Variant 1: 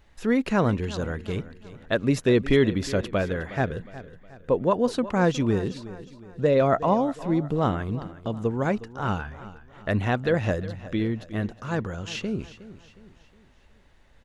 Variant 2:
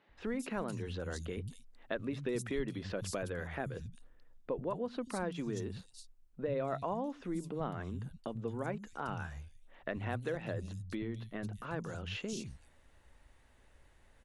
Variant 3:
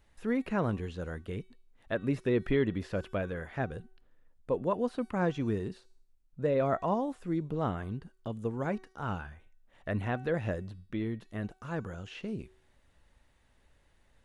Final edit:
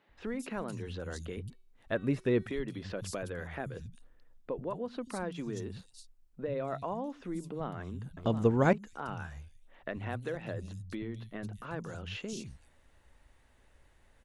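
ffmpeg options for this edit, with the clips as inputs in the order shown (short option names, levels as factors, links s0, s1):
-filter_complex "[1:a]asplit=3[s0][s1][s2];[s0]atrim=end=1.502[s3];[2:a]atrim=start=1.498:end=2.462[s4];[s1]atrim=start=2.458:end=8.172[s5];[0:a]atrim=start=8.168:end=8.732[s6];[s2]atrim=start=8.728[s7];[s3][s4]acrossfade=d=0.004:c1=hsin:c2=hsin[s8];[s8][s5]acrossfade=d=0.004:c1=hsin:c2=hsin[s9];[s9][s6]acrossfade=d=0.004:c1=hsin:c2=hsin[s10];[s10][s7]acrossfade=d=0.004:c1=hsin:c2=hsin"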